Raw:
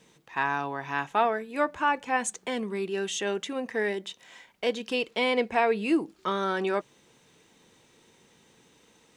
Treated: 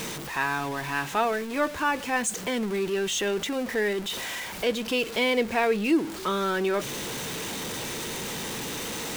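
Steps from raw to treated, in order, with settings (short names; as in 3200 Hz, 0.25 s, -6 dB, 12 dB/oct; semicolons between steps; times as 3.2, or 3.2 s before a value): zero-crossing step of -33 dBFS; dynamic EQ 840 Hz, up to -5 dB, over -36 dBFS, Q 1.4; reverse; upward compressor, threshold -32 dBFS; reverse; gain +1.5 dB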